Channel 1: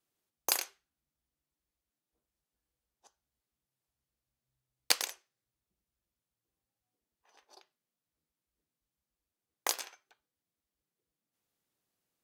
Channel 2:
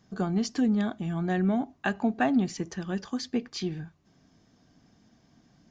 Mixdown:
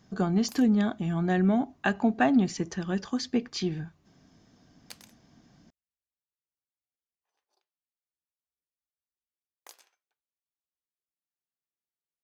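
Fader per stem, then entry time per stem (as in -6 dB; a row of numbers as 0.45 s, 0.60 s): -19.0 dB, +2.0 dB; 0.00 s, 0.00 s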